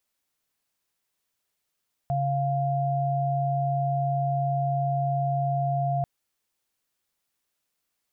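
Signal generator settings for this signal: chord C#3/F5 sine, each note -25.5 dBFS 3.94 s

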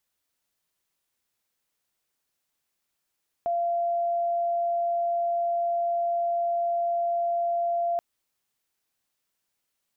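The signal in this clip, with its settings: tone sine 688 Hz -23 dBFS 4.53 s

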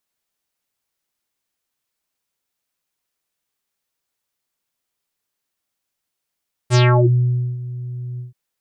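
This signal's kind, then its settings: synth note square B2 24 dB/octave, low-pass 230 Hz, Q 3.4, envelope 5.5 oct, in 0.40 s, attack 46 ms, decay 0.83 s, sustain -18 dB, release 0.14 s, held 1.49 s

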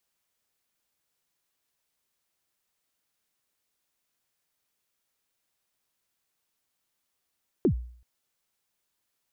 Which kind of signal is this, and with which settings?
kick drum length 0.38 s, from 430 Hz, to 60 Hz, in 92 ms, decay 0.54 s, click off, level -16 dB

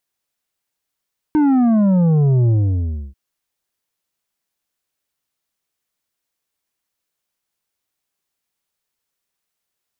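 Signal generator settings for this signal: sub drop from 310 Hz, over 1.79 s, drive 7.5 dB, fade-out 0.65 s, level -12 dB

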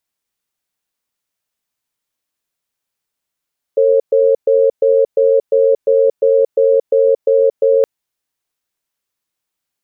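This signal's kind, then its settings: cadence 453 Hz, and 542 Hz, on 0.23 s, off 0.12 s, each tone -11 dBFS 4.07 s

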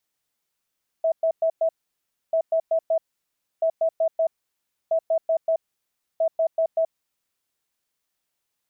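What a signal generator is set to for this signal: beep pattern sine 651 Hz, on 0.08 s, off 0.11 s, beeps 4, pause 0.64 s, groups 5, -17.5 dBFS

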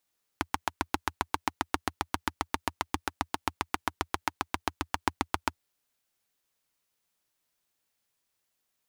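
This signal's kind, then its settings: single-cylinder engine model, steady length 5.19 s, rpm 900, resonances 83/290/870 Hz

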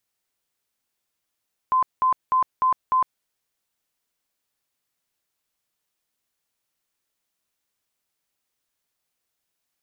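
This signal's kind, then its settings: tone bursts 1.03 kHz, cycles 110, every 0.30 s, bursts 5, -16 dBFS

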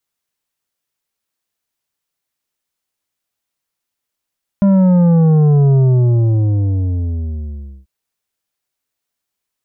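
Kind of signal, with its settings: sub drop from 200 Hz, over 3.24 s, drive 8.5 dB, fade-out 2.12 s, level -8.5 dB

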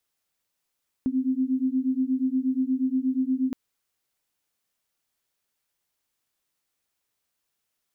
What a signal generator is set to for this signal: beating tones 256 Hz, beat 8.4 Hz, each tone -25 dBFS 2.47 s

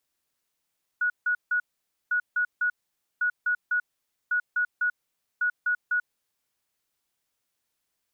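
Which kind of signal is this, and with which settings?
beep pattern sine 1.46 kHz, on 0.09 s, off 0.16 s, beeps 3, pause 0.51 s, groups 5, -21.5 dBFS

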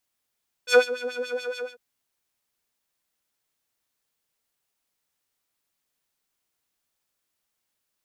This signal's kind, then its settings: synth patch with filter wobble B4, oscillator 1 square, interval -12 st, oscillator 2 level -7 dB, filter bandpass, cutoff 1.1 kHz, Q 1.3, filter envelope 1 oct, attack 79 ms, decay 0.11 s, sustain -18 dB, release 0.18 s, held 0.92 s, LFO 7 Hz, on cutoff 1.6 oct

